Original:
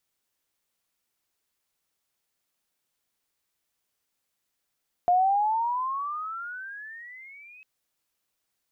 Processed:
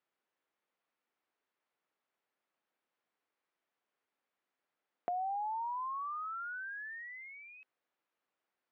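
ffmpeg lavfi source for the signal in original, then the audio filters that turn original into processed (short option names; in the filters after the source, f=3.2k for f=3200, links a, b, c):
-f lavfi -i "aevalsrc='pow(10,(-17-30*t/2.55)/20)*sin(2*PI*702*2.55/(22.5*log(2)/12)*(exp(22.5*log(2)/12*t/2.55)-1))':d=2.55:s=44100"
-af "acompressor=threshold=-40dB:ratio=3,highpass=260,lowpass=2k"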